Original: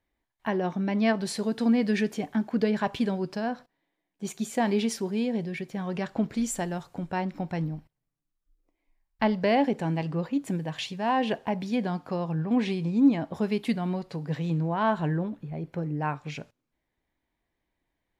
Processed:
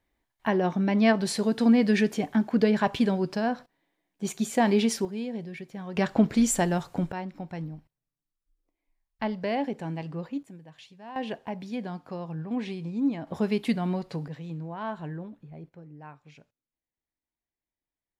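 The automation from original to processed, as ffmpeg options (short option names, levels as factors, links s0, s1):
-af "asetnsamples=n=441:p=0,asendcmd='5.05 volume volume -5.5dB;5.97 volume volume 6dB;7.12 volume volume -5.5dB;10.43 volume volume -16.5dB;11.16 volume volume -6dB;13.27 volume volume 1dB;14.28 volume volume -9dB;15.69 volume volume -16dB',volume=1.41"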